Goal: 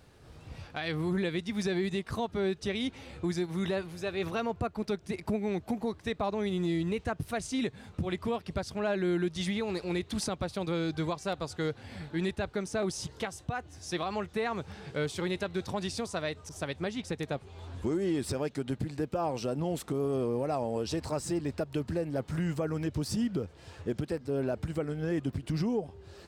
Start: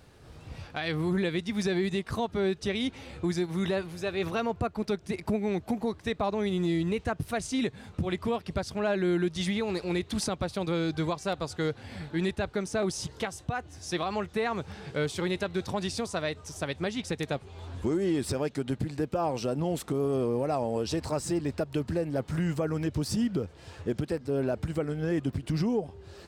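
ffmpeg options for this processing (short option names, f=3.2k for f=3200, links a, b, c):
-filter_complex "[0:a]asettb=1/sr,asplit=3[a][b][c];[a]atrim=end=16.494[d];[b]atrim=start=16.49:end=17.38,asetpts=PTS-STARTPTS,afade=t=in:d=0.004:c=qsin,afade=t=out:st=0.886:d=0.004:c=qsin,adynamicequalizer=threshold=0.00447:dfrequency=1800:dqfactor=0.7:tfrequency=1800:tqfactor=0.7:attack=5:release=100:ratio=0.375:range=2:mode=cutabove:tftype=highshelf[e];[c]atrim=start=17.376[f];[d][e]acrossfade=d=0.004:c1=hsin:c2=qsin[g];[g][f]acrossfade=d=0.004:c1=qsin:c2=hsin,volume=-2.5dB"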